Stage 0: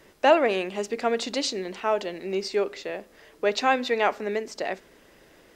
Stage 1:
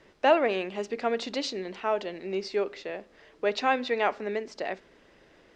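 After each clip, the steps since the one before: LPF 5000 Hz 12 dB/oct; gain -3 dB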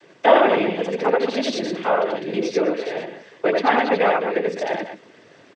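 loudspeakers at several distances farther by 29 m -2 dB, 70 m -9 dB; treble ducked by the level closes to 2500 Hz, closed at -23 dBFS; noise vocoder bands 16; gain +7 dB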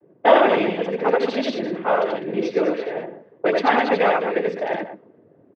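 low-pass opened by the level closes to 410 Hz, open at -14.5 dBFS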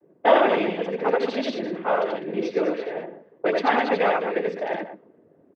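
bell 120 Hz -9 dB 0.32 oct; gain -3 dB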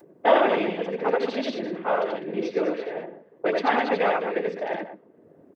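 upward compressor, threshold -43 dBFS; gain -1.5 dB

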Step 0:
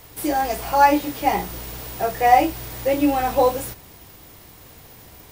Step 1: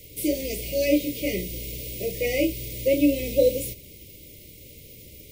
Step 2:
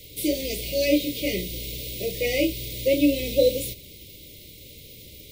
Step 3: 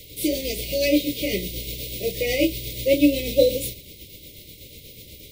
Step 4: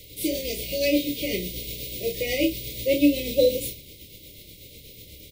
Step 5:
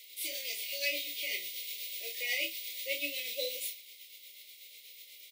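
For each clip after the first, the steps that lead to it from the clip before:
Chebyshev band-stop 590–2100 Hz, order 5
bell 3800 Hz +9 dB 0.63 oct
tremolo 8.2 Hz, depth 43%; gain +3.5 dB
doubler 28 ms -7.5 dB; gain -3 dB
resonant high-pass 1300 Hz, resonance Q 9.1; gain -5.5 dB

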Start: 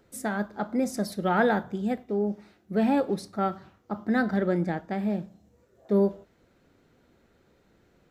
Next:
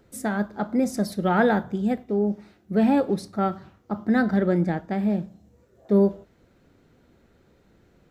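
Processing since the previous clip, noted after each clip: low shelf 280 Hz +5 dB; gain +1.5 dB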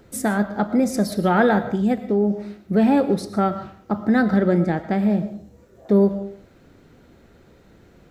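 in parallel at +3 dB: compressor, threshold -28 dBFS, peak gain reduction 13.5 dB; on the sum: digital reverb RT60 0.48 s, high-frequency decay 0.7×, pre-delay 75 ms, DRR 12.5 dB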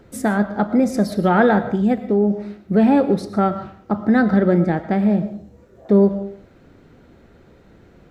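high shelf 4600 Hz -8.5 dB; gain +2.5 dB

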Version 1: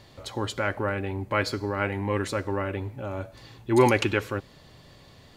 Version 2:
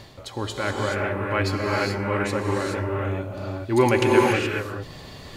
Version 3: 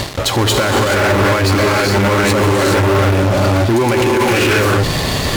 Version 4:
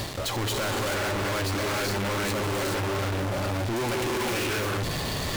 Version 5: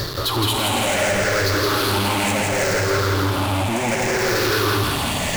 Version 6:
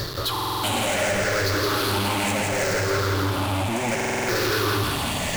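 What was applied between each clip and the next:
non-linear reverb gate 0.45 s rising, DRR -1.5 dB; reverse; upward compressor, threshold -31 dBFS; reverse
in parallel at -7 dB: fuzz box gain 42 dB, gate -46 dBFS; on the sum: maximiser +13.5 dB; gain -6.5 dB
overloaded stage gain 23 dB; gain -4 dB
moving spectral ripple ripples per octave 0.58, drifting -0.69 Hz, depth 11 dB; on a send: thinning echo 0.166 s, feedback 63%, high-pass 520 Hz, level -3 dB; on the sum: gain +5 dB
stuck buffer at 0.31/3.96, samples 2048, times 6; gain -3.5 dB

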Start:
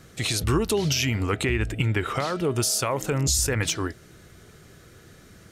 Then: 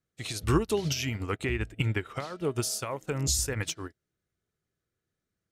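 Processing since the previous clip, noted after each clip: upward expander 2.5:1, over -43 dBFS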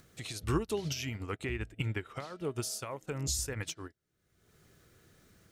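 upward compressor, threshold -33 dBFS; gain -6 dB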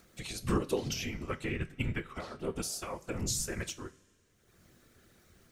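whisperiser; two-slope reverb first 0.27 s, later 2.1 s, from -21 dB, DRR 10 dB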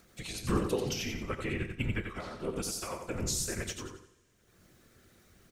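feedback echo 90 ms, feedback 34%, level -6 dB

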